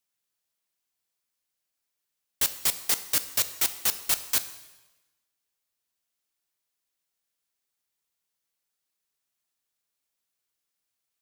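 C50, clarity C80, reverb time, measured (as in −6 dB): 13.0 dB, 14.5 dB, 1.1 s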